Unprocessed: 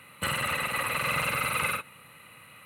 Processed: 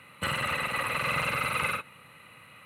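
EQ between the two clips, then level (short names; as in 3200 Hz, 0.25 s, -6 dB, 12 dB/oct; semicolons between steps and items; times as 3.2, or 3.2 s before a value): high shelf 8900 Hz -11 dB; 0.0 dB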